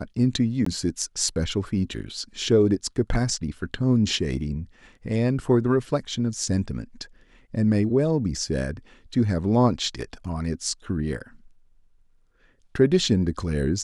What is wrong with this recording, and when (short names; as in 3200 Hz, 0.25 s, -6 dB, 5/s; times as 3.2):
0.65–0.66 gap 14 ms